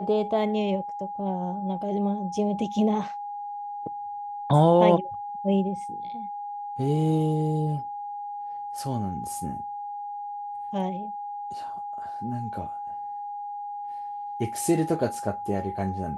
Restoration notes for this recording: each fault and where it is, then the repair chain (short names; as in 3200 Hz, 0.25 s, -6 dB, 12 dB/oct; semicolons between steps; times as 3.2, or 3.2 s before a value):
tone 820 Hz -32 dBFS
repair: notch 820 Hz, Q 30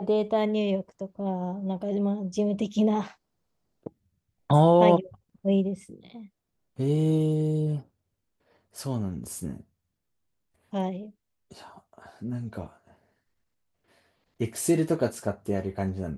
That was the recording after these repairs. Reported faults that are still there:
none